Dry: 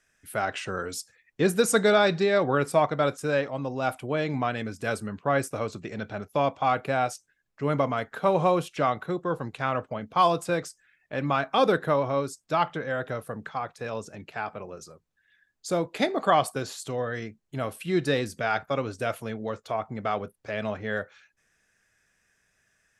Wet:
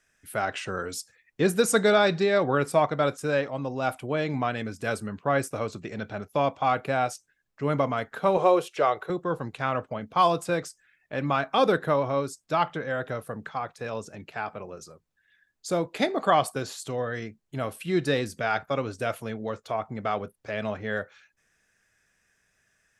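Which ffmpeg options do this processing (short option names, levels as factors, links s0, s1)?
-filter_complex "[0:a]asettb=1/sr,asplit=3[s0][s1][s2];[s0]atrim=end=8.374[s3];[s1]atrim=start=8.37:end=9.1,asetpts=PTS-STARTPTS,afade=t=in:d=0.004:c=qsin,afade=t=out:st=0.726:d=0.004:c=qsin,lowshelf=f=310:t=q:w=3:g=-8[s4];[s2]atrim=start=9.096[s5];[s3][s4]acrossfade=d=0.004:c1=hsin:c2=qsin[s6];[s6][s5]acrossfade=d=0.004:c1=qsin:c2=hsin"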